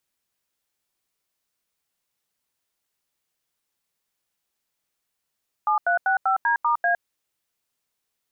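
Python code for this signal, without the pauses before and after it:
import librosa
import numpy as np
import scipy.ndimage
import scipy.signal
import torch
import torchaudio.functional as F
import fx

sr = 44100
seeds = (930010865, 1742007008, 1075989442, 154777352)

y = fx.dtmf(sr, digits='7365D*A', tone_ms=110, gap_ms=85, level_db=-20.5)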